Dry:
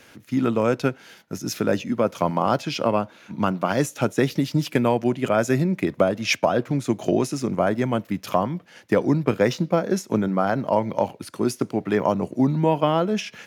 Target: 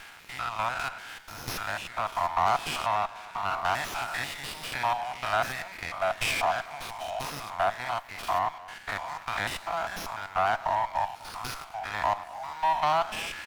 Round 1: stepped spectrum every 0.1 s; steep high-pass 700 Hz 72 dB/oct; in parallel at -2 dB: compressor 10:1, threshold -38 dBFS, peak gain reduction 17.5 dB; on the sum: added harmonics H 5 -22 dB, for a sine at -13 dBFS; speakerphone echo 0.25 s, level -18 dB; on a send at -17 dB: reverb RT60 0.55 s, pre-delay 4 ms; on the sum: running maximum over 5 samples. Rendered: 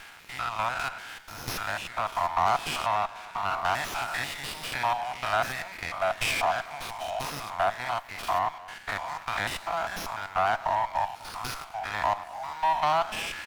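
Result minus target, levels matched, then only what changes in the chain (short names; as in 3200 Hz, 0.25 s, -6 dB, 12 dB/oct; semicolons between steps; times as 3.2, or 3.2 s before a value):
compressor: peak gain reduction -5.5 dB
change: compressor 10:1, threshold -44 dBFS, peak gain reduction 23 dB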